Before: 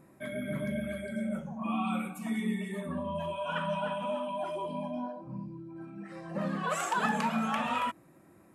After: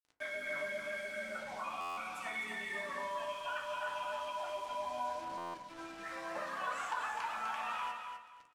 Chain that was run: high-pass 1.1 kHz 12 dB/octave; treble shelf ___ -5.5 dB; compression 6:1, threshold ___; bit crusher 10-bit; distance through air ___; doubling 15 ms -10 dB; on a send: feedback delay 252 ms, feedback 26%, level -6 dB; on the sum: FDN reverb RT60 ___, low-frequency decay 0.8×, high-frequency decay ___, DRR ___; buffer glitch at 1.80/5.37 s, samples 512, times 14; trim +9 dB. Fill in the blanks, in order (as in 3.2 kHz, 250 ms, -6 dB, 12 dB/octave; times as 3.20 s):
3 kHz, -49 dBFS, 60 m, 0.49 s, 0.4×, 3.5 dB